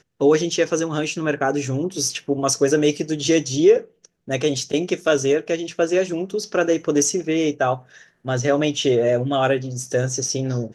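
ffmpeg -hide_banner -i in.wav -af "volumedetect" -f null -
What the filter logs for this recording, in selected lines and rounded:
mean_volume: -20.7 dB
max_volume: -4.9 dB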